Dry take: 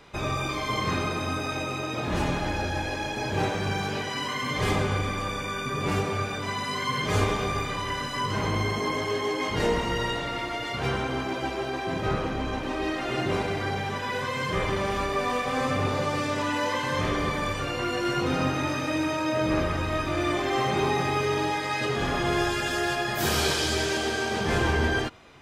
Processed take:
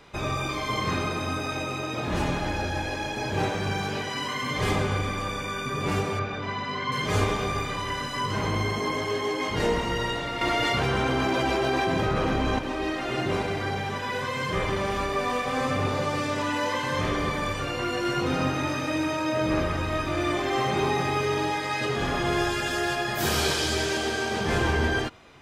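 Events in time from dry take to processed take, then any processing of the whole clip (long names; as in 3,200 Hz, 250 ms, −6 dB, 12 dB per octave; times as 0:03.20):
0:06.19–0:06.92: Gaussian smoothing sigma 1.8 samples
0:10.41–0:12.59: envelope flattener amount 100%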